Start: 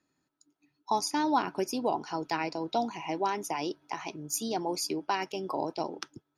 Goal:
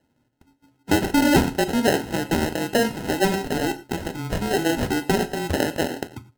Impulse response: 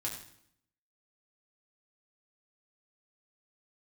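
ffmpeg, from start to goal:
-filter_complex "[0:a]equalizer=frequency=130:width_type=o:width=0.38:gain=8,afreqshift=-15,acrusher=samples=38:mix=1:aa=0.000001,asplit=2[link_01][link_02];[1:a]atrim=start_sample=2205,afade=type=out:start_time=0.14:duration=0.01,atrim=end_sample=6615,asetrate=33957,aresample=44100[link_03];[link_02][link_03]afir=irnorm=-1:irlink=0,volume=-8dB[link_04];[link_01][link_04]amix=inputs=2:normalize=0,volume=6.5dB"

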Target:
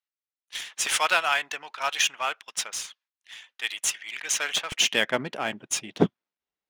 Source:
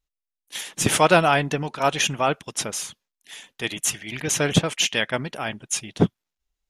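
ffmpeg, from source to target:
ffmpeg -i in.wav -af "asetnsamples=nb_out_samples=441:pad=0,asendcmd='4.72 highpass f 210',highpass=1300,adynamicsmooth=sensitivity=6:basefreq=3600" out.wav

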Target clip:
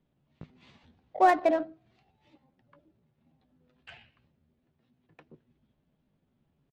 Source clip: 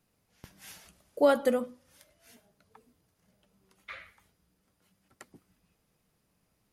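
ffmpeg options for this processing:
ffmpeg -i in.wav -filter_complex "[0:a]asplit=2[link_01][link_02];[link_02]asetrate=37084,aresample=44100,atempo=1.18921,volume=-17dB[link_03];[link_01][link_03]amix=inputs=2:normalize=0,lowpass=frequency=3000:width=0.5412,lowpass=frequency=3000:width=1.3066,asetrate=57191,aresample=44100,atempo=0.771105,equalizer=frequency=150:width_type=o:width=0.33:gain=8,asplit=2[link_04][link_05];[link_05]adynamicsmooth=sensitivity=5:basefreq=820,volume=2dB[link_06];[link_04][link_06]amix=inputs=2:normalize=0,volume=-5.5dB" out.wav

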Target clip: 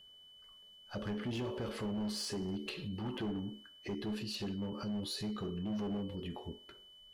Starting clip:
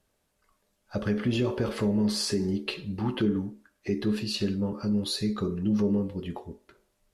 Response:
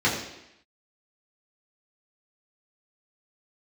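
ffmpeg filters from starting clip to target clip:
-af "asoftclip=type=hard:threshold=-24.5dB,alimiter=level_in=9dB:limit=-24dB:level=0:latency=1:release=93,volume=-9dB,aeval=exprs='val(0)+0.00178*sin(2*PI*3000*n/s)':channel_layout=same,volume=-1dB"

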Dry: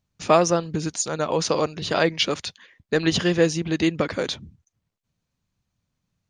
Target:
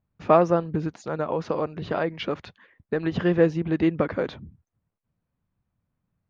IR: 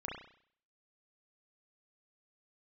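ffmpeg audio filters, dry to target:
-filter_complex "[0:a]lowpass=1600,asettb=1/sr,asplit=3[link_01][link_02][link_03];[link_01]atrim=end=0.804[link_04];[link_02]atrim=start=0.8:end=3.17,asetpts=PTS-STARTPTS,afade=type=in:duration=0.004:curve=qsin,afade=type=out:start_time=2.366:duration=0.004:curve=qsin,acompressor=threshold=-23dB:ratio=3[link_05];[link_03]atrim=start=3.166[link_06];[link_04][link_05]acrossfade=duration=0.004:curve1=hsin:curve2=qsin[link_07];[link_07][link_06]acrossfade=duration=0.004:curve1=qsin:curve2=hsin"

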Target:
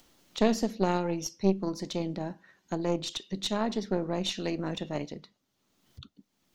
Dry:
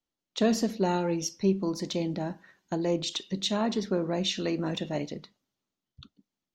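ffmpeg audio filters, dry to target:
ffmpeg -i in.wav -af "aeval=exprs='0.224*(cos(1*acos(clip(val(0)/0.224,-1,1)))-cos(1*PI/2))+0.0562*(cos(2*acos(clip(val(0)/0.224,-1,1)))-cos(2*PI/2))+0.0251*(cos(3*acos(clip(val(0)/0.224,-1,1)))-cos(3*PI/2))':channel_layout=same,acompressor=mode=upward:threshold=-39dB:ratio=2.5" out.wav

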